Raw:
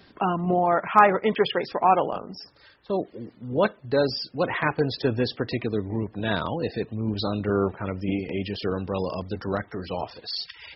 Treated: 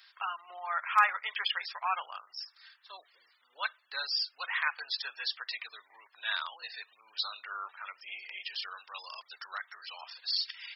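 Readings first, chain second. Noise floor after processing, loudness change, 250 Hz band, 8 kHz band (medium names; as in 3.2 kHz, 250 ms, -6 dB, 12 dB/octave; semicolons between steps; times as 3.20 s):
-69 dBFS, -9.0 dB, under -40 dB, no reading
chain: high-pass 1.2 kHz 24 dB/octave; treble shelf 3.5 kHz +6 dB; trim -3.5 dB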